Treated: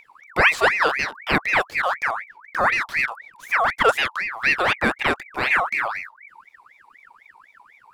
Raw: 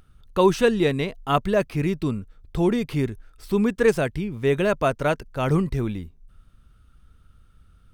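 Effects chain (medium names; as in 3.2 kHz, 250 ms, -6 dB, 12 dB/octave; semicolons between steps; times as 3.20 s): ring modulator with a swept carrier 1.6 kHz, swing 45%, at 4 Hz; trim +3.5 dB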